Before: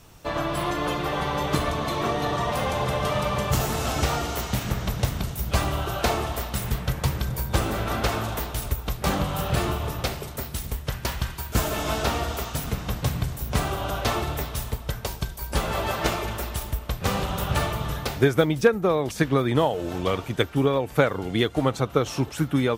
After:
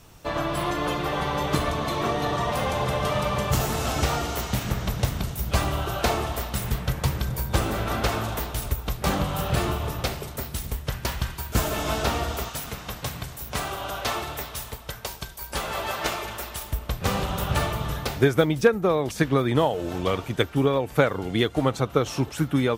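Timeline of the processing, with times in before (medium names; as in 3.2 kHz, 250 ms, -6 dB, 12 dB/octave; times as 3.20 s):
12.49–16.72 s: bass shelf 400 Hz -10 dB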